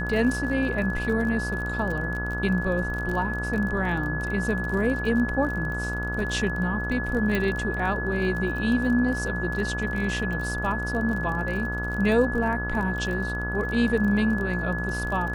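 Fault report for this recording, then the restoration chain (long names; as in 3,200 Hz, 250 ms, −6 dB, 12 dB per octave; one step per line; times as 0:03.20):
mains buzz 60 Hz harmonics 28 −31 dBFS
surface crackle 31 per second −31 dBFS
whistle 1,700 Hz −30 dBFS
0:07.35: click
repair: click removal
hum removal 60 Hz, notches 28
notch filter 1,700 Hz, Q 30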